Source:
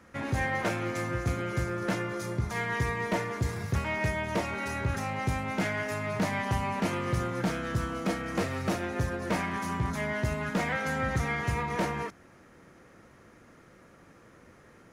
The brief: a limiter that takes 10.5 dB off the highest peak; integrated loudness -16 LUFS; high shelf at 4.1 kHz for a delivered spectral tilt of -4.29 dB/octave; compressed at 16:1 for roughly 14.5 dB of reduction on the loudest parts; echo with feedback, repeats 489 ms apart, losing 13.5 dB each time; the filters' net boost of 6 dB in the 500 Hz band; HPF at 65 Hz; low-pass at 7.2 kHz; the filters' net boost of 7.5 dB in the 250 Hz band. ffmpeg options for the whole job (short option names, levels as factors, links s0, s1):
-af "highpass=65,lowpass=7200,equalizer=f=250:t=o:g=9,equalizer=f=500:t=o:g=5,highshelf=f=4100:g=-7,acompressor=threshold=0.0224:ratio=16,alimiter=level_in=2.99:limit=0.0631:level=0:latency=1,volume=0.335,aecho=1:1:489|978:0.211|0.0444,volume=20"